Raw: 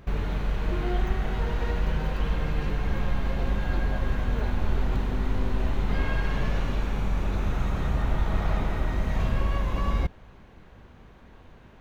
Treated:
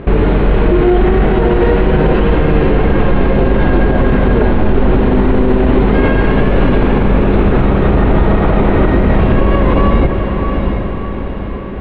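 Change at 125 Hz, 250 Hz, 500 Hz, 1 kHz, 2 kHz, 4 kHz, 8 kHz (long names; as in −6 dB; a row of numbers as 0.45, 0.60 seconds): +15.0 dB, +21.5 dB, +23.0 dB, +17.5 dB, +15.5 dB, +11.5 dB, can't be measured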